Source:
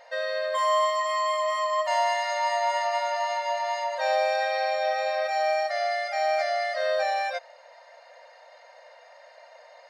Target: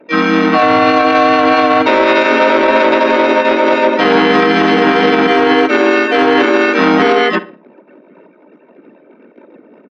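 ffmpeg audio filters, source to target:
-filter_complex "[0:a]anlmdn=0.0398,aeval=exprs='0.224*(cos(1*acos(clip(val(0)/0.224,-1,1)))-cos(1*PI/2))+0.112*(cos(2*acos(clip(val(0)/0.224,-1,1)))-cos(2*PI/2))+0.00178*(cos(6*acos(clip(val(0)/0.224,-1,1)))-cos(6*PI/2))+0.0141*(cos(7*acos(clip(val(0)/0.224,-1,1)))-cos(7*PI/2))+0.00501*(cos(8*acos(clip(val(0)/0.224,-1,1)))-cos(8*PI/2))':c=same,highpass=f=580:t=q:w=0.5412,highpass=f=580:t=q:w=1.307,lowpass=f=3.3k:t=q:w=0.5176,lowpass=f=3.3k:t=q:w=0.7071,lowpass=f=3.3k:t=q:w=1.932,afreqshift=-310,asplit=2[a][b];[b]adelay=60,lowpass=f=2.1k:p=1,volume=-16dB,asplit=2[c][d];[d]adelay=60,lowpass=f=2.1k:p=1,volume=0.42,asplit=2[e][f];[f]adelay=60,lowpass=f=2.1k:p=1,volume=0.42,asplit=2[g][h];[h]adelay=60,lowpass=f=2.1k:p=1,volume=0.42[i];[a][c][e][g][i]amix=inputs=5:normalize=0,asplit=3[j][k][l];[k]asetrate=37084,aresample=44100,atempo=1.18921,volume=-1dB[m];[l]asetrate=66075,aresample=44100,atempo=0.66742,volume=-1dB[n];[j][m][n]amix=inputs=3:normalize=0,alimiter=level_in=18dB:limit=-1dB:release=50:level=0:latency=1" -ar 44100 -c:a libmp3lame -b:a 80k

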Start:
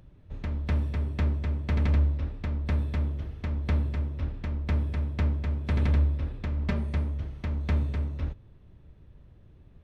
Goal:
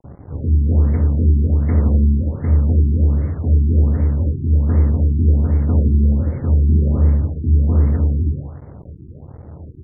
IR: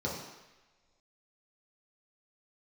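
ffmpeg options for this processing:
-filter_complex "[0:a]aresample=11025,asoftclip=type=tanh:threshold=-28dB,aresample=44100,aecho=1:1:176|352|528|704:0.158|0.0729|0.0335|0.0154[a];[1:a]atrim=start_sample=2205,afade=t=out:st=0.24:d=0.01,atrim=end_sample=11025[b];[a][b]afir=irnorm=-1:irlink=0,acrusher=bits=6:mix=0:aa=0.5,afftfilt=real='re*lt(b*sr/1024,400*pow(2300/400,0.5+0.5*sin(2*PI*1.3*pts/sr)))':imag='im*lt(b*sr/1024,400*pow(2300/400,0.5+0.5*sin(2*PI*1.3*pts/sr)))':win_size=1024:overlap=0.75,volume=5.5dB"

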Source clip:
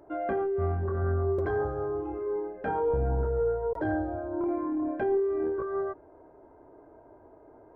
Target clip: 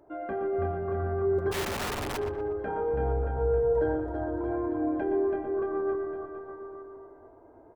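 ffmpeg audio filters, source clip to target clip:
-filter_complex "[0:a]asplit=2[a][b];[b]aecho=0:1:330|627|894.3|1135|1351:0.631|0.398|0.251|0.158|0.1[c];[a][c]amix=inputs=2:normalize=0,asplit=3[d][e][f];[d]afade=t=out:st=1.51:d=0.02[g];[e]aeval=exprs='(mod(16.8*val(0)+1,2)-1)/16.8':c=same,afade=t=in:st=1.51:d=0.02,afade=t=out:st=2.16:d=0.02[h];[f]afade=t=in:st=2.16:d=0.02[i];[g][h][i]amix=inputs=3:normalize=0,asplit=2[j][k];[k]adelay=120,lowpass=f=1.9k:p=1,volume=-6dB,asplit=2[l][m];[m]adelay=120,lowpass=f=1.9k:p=1,volume=0.55,asplit=2[n][o];[o]adelay=120,lowpass=f=1.9k:p=1,volume=0.55,asplit=2[p][q];[q]adelay=120,lowpass=f=1.9k:p=1,volume=0.55,asplit=2[r][s];[s]adelay=120,lowpass=f=1.9k:p=1,volume=0.55,asplit=2[t][u];[u]adelay=120,lowpass=f=1.9k:p=1,volume=0.55,asplit=2[v][w];[w]adelay=120,lowpass=f=1.9k:p=1,volume=0.55[x];[l][n][p][r][t][v][x]amix=inputs=7:normalize=0[y];[j][y]amix=inputs=2:normalize=0,volume=-4dB"

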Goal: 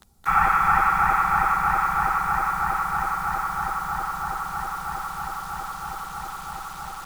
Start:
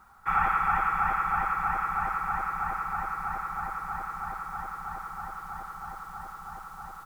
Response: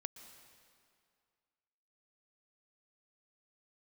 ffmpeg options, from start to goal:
-filter_complex "[0:a]asettb=1/sr,asplit=3[a][b][c];[a]atrim=end=3.714[d];[b]atrim=start=3.71:end=4.51,asetpts=PTS-STARTPTS,afade=t=in:d=0.004:c=qsin,afade=t=out:st=0.796:d=0.004:c=qsin,aemphasis=mode=reproduction:type=cd[e];[c]atrim=start=4.506[f];[d][e]acrossfade=d=0.004:c1=hsin:c2=qsin[g];[g][f]acrossfade=d=0.004:c1=qsin:c2=hsin[h];[1:a]atrim=start_sample=2205,asetrate=25578,aresample=44100[i];[h][i]afir=irnorm=-1:irlink=0,acrossover=split=170|500|3400[j][k][l][m];[l]acrusher=bits=7:mix=0:aa=0.000001[n];[j][k][n][m]amix=inputs=4:normalize=0,volume=7dB"

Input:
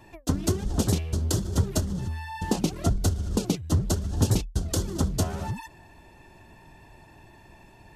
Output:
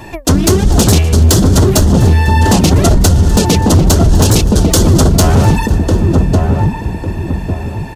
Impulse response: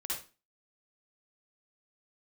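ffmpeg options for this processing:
-filter_complex "[0:a]aeval=exprs='0.355*(cos(1*acos(clip(val(0)/0.355,-1,1)))-cos(1*PI/2))+0.00562*(cos(5*acos(clip(val(0)/0.355,-1,1)))-cos(5*PI/2))':c=same,asplit=2[a][b];[b]adelay=1149,lowpass=f=880:p=1,volume=-3dB,asplit=2[c][d];[d]adelay=1149,lowpass=f=880:p=1,volume=0.36,asplit=2[e][f];[f]adelay=1149,lowpass=f=880:p=1,volume=0.36,asplit=2[g][h];[h]adelay=1149,lowpass=f=880:p=1,volume=0.36,asplit=2[i][j];[j]adelay=1149,lowpass=f=880:p=1,volume=0.36[k];[c][e][g][i][k]amix=inputs=5:normalize=0[l];[a][l]amix=inputs=2:normalize=0,acontrast=42,apsyclip=18dB,asplit=2[m][n];[n]asplit=5[o][p][q][r][s];[o]adelay=249,afreqshift=31,volume=-18dB[t];[p]adelay=498,afreqshift=62,volume=-22.7dB[u];[q]adelay=747,afreqshift=93,volume=-27.5dB[v];[r]adelay=996,afreqshift=124,volume=-32.2dB[w];[s]adelay=1245,afreqshift=155,volume=-36.9dB[x];[t][u][v][w][x]amix=inputs=5:normalize=0[y];[m][y]amix=inputs=2:normalize=0,volume=-3.5dB"

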